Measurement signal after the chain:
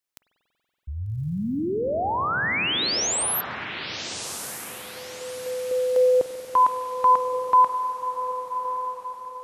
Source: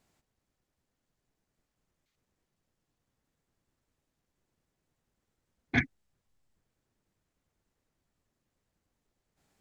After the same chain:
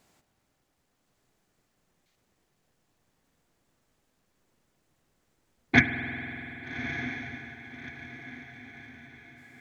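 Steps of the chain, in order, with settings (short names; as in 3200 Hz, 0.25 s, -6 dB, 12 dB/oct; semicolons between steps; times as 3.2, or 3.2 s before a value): low shelf 120 Hz -7.5 dB; diffused feedback echo 1.207 s, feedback 43%, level -9 dB; spring tank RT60 3.9 s, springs 47 ms, chirp 60 ms, DRR 7.5 dB; gain +8.5 dB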